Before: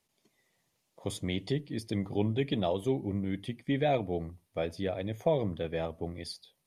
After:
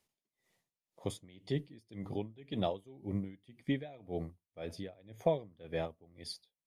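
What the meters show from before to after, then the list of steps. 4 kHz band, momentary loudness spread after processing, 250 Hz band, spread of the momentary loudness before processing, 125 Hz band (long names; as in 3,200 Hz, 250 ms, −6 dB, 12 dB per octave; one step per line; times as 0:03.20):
−6.5 dB, 12 LU, −7.0 dB, 10 LU, −7.0 dB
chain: tremolo with a sine in dB 1.9 Hz, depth 24 dB
level −1.5 dB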